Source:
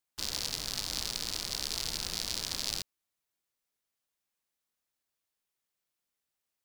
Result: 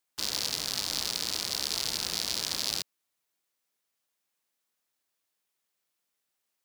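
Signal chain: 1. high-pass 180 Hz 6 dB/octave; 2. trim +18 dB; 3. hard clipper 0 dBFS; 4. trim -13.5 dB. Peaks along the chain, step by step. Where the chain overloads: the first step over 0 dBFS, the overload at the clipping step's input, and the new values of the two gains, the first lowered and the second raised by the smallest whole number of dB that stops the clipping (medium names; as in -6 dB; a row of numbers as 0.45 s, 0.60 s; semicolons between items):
-13.5 dBFS, +4.5 dBFS, 0.0 dBFS, -13.5 dBFS; step 2, 4.5 dB; step 2 +13 dB, step 4 -8.5 dB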